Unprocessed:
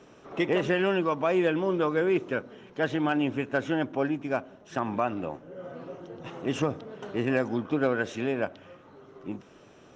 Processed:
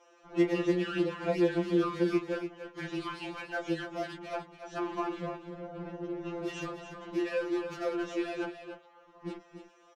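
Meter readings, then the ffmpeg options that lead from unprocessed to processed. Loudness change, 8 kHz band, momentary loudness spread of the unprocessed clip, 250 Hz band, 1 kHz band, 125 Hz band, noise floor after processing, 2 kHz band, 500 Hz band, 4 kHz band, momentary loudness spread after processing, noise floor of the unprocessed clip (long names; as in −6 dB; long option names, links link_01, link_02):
−5.5 dB, can't be measured, 16 LU, −3.0 dB, −6.5 dB, −5.5 dB, −61 dBFS, −7.5 dB, −5.0 dB, −4.0 dB, 15 LU, −54 dBFS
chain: -filter_complex "[0:a]equalizer=frequency=270:width_type=o:width=1.2:gain=11,acrossover=split=140|550[link_01][link_02][link_03];[link_01]acompressor=threshold=-48dB:ratio=4[link_04];[link_02]acompressor=threshold=-27dB:ratio=4[link_05];[link_03]acompressor=threshold=-27dB:ratio=4[link_06];[link_04][link_05][link_06]amix=inputs=3:normalize=0,acrossover=split=460|3600[link_07][link_08][link_09];[link_07]acrusher=bits=5:mix=0:aa=0.5[link_10];[link_08]asplit=2[link_11][link_12];[link_12]adelay=28,volume=-6.5dB[link_13];[link_11][link_13]amix=inputs=2:normalize=0[link_14];[link_10][link_14][link_09]amix=inputs=3:normalize=0,aecho=1:1:287:0.335,afftfilt=real='re*2.83*eq(mod(b,8),0)':imag='im*2.83*eq(mod(b,8),0)':win_size=2048:overlap=0.75,volume=-3.5dB"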